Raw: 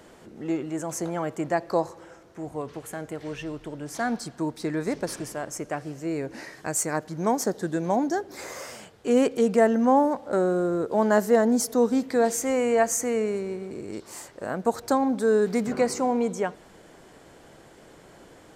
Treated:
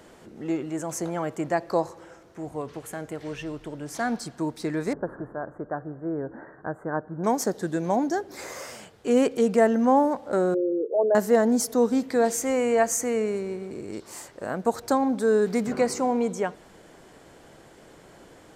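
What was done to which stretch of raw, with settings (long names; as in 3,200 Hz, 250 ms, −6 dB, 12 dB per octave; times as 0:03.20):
0:04.93–0:07.24: elliptic low-pass filter 1,600 Hz
0:10.54–0:11.15: spectral envelope exaggerated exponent 3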